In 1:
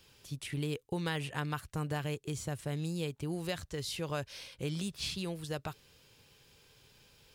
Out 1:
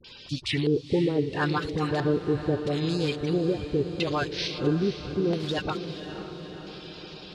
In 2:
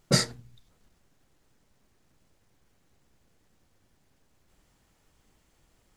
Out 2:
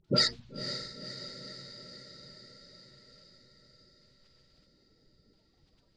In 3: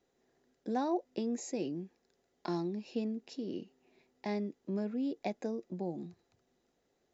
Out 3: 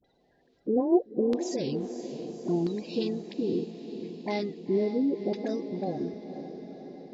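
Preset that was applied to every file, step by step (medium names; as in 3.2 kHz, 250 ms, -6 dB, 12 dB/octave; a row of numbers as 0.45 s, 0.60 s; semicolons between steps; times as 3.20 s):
coarse spectral quantiser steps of 30 dB; in parallel at -1 dB: level held to a coarse grid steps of 16 dB; on the sum: phase dispersion highs, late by 46 ms, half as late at 840 Hz; LFO low-pass square 0.75 Hz 410–4200 Hz; on a send: echo that smears into a reverb 512 ms, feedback 63%, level -10 dB; on the sum: peak normalisation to -12 dBFS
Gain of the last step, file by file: +7.5 dB, -5.5 dB, +3.5 dB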